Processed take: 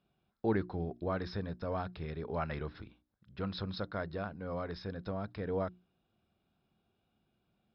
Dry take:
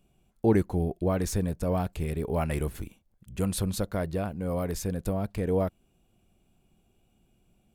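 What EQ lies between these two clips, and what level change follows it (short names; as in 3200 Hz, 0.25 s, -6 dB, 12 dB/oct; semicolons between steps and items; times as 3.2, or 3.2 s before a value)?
HPF 71 Hz; rippled Chebyshev low-pass 5300 Hz, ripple 9 dB; notches 60/120/180/240/300/360 Hz; 0.0 dB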